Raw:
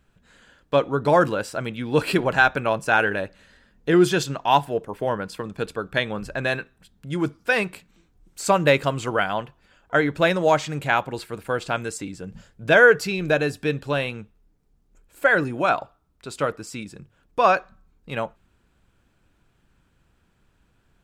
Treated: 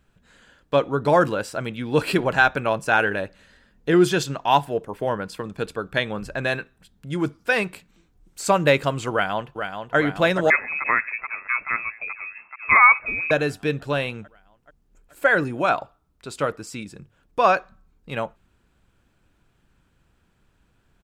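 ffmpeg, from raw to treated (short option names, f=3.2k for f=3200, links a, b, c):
-filter_complex "[0:a]asplit=2[a][b];[b]afade=t=in:st=9.12:d=0.01,afade=t=out:st=9.97:d=0.01,aecho=0:1:430|860|1290|1720|2150|2580|3010|3440|3870|4300|4730|5160:0.446684|0.335013|0.25126|0.188445|0.141333|0.106|0.0795001|0.0596251|0.0447188|0.0335391|0.0251543|0.0188657[c];[a][c]amix=inputs=2:normalize=0,asettb=1/sr,asplit=3[d][e][f];[d]atrim=end=10.504[g];[e]atrim=start=10.5:end=13.31,asetpts=PTS-STARTPTS,afade=t=in:d=0.004:c=qsin,afade=t=out:st=2.806:d=0.004:c=qsin,lowpass=f=2.3k:t=q:w=0.5098,lowpass=f=2.3k:t=q:w=0.6013,lowpass=f=2.3k:t=q:w=0.9,lowpass=f=2.3k:t=q:w=2.563,afreqshift=-2700[h];[f]atrim=start=13.306[i];[g][h]acrossfade=d=0.004:c1=hsin:c2=qsin[j];[j][i]acrossfade=d=0.004:c1=qsin:c2=hsin"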